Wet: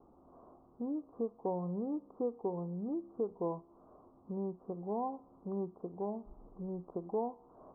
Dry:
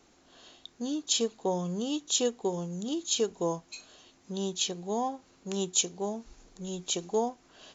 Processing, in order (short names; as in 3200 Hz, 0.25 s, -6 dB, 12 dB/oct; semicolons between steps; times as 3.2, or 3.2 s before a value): steep low-pass 1200 Hz 72 dB/oct; compressor 1.5:1, threshold -47 dBFS, peak gain reduction 8.5 dB; resonator 68 Hz, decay 0.98 s, harmonics all, mix 40%; gain +5.5 dB